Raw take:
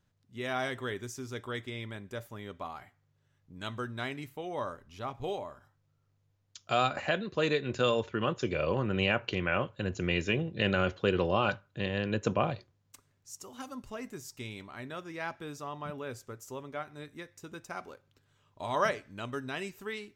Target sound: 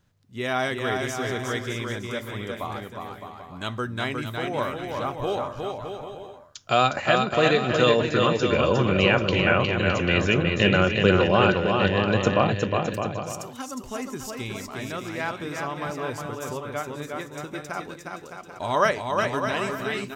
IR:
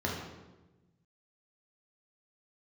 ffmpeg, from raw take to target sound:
-af "aecho=1:1:360|612|788.4|911.9|998.3:0.631|0.398|0.251|0.158|0.1,volume=2.37"

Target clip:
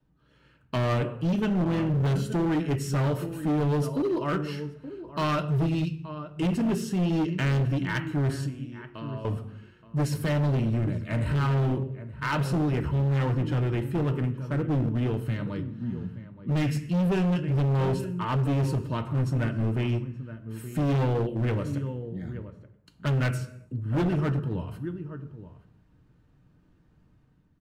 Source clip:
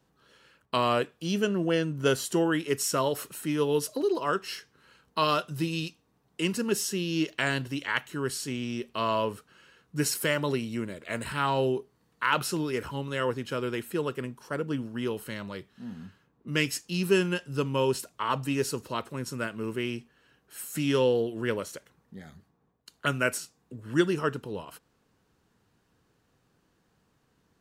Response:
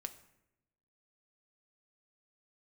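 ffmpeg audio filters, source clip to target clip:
-filter_complex "[0:a]bass=f=250:g=15,treble=f=4000:g=-10,dynaudnorm=f=110:g=7:m=2.11,flanger=delay=4.6:depth=8.5:regen=-88:speed=0.39:shape=triangular,asettb=1/sr,asplit=3[s0][s1][s2];[s0]atrim=end=8.364[s3];[s1]atrim=start=8.36:end=9.25,asetpts=PTS-STARTPTS,afade=t=in:d=0.004:c=qsin,afade=t=out:st=0.886:d=0.004:c=qsin,acompressor=threshold=0.02:ratio=8[s4];[s2]atrim=start=9.246[s5];[s3][s4]acrossfade=d=0.004:c1=hsin:c2=qsin[s6];[s6][s5]acrossfade=d=0.004:c1=qsin:c2=hsin[s7];[1:a]atrim=start_sample=2205,afade=t=out:st=0.44:d=0.01,atrim=end_sample=19845[s8];[s7][s8]afir=irnorm=-1:irlink=0,adynamicequalizer=threshold=0.0141:dfrequency=100:dqfactor=1.2:tfrequency=100:tqfactor=1.2:attack=5:release=100:ratio=0.375:range=3:mode=boostabove:tftype=bell,asplit=2[s9][s10];[s10]adelay=874.6,volume=0.2,highshelf=f=4000:g=-19.7[s11];[s9][s11]amix=inputs=2:normalize=0,asoftclip=type=hard:threshold=0.0794"

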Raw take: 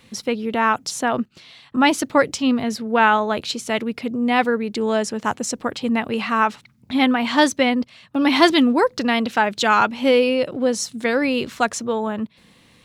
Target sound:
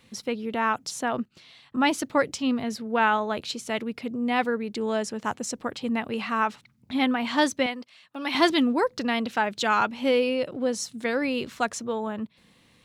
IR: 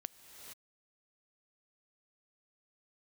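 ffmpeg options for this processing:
-filter_complex "[0:a]asettb=1/sr,asplit=3[s0][s1][s2];[s0]atrim=end=7.664[s3];[s1]atrim=start=7.66:end=8.35,asetpts=PTS-STARTPTS,afade=t=in:d=0.004:c=qsin,afade=t=out:st=0.686:d=0.004:c=qsin,highpass=f=850:p=1[s4];[s2]atrim=start=8.346[s5];[s3][s4]acrossfade=d=0.004:c1=hsin:c2=qsin[s6];[s6][s5]acrossfade=d=0.004:c1=qsin:c2=hsin,volume=0.473"

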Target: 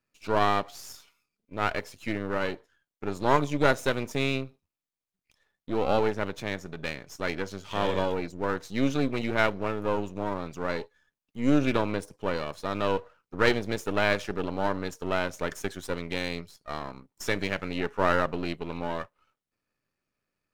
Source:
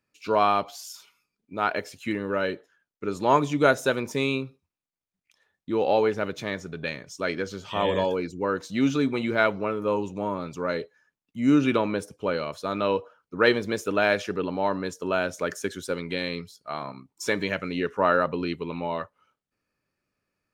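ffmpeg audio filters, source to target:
-af "aeval=exprs='if(lt(val(0),0),0.251*val(0),val(0))':c=same"

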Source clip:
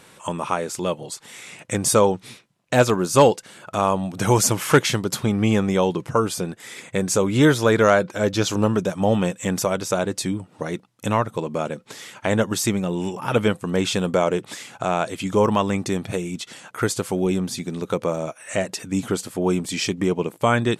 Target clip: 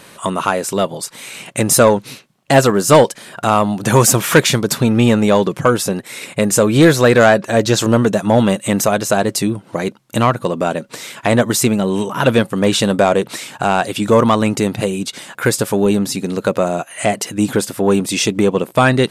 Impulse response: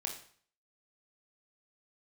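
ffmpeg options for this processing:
-af "asetrate=48000,aresample=44100,acontrast=81,volume=1.12"

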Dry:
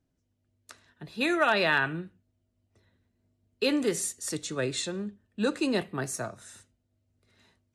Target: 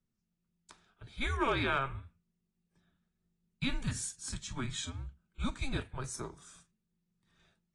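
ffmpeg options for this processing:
-af "afreqshift=-270,volume=0.447" -ar 22050 -c:a aac -b:a 32k

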